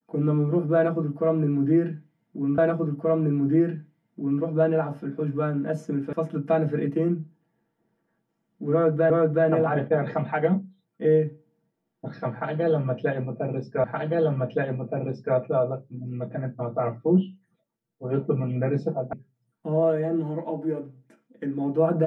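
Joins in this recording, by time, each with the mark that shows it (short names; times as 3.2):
2.58 repeat of the last 1.83 s
6.13 sound cut off
9.1 repeat of the last 0.37 s
13.84 repeat of the last 1.52 s
19.13 sound cut off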